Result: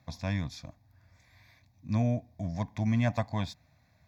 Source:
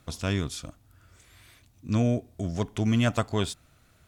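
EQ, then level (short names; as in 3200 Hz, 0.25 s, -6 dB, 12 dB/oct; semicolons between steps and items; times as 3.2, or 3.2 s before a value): HPF 86 Hz; high shelf 4200 Hz -9.5 dB; fixed phaser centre 2000 Hz, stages 8; 0.0 dB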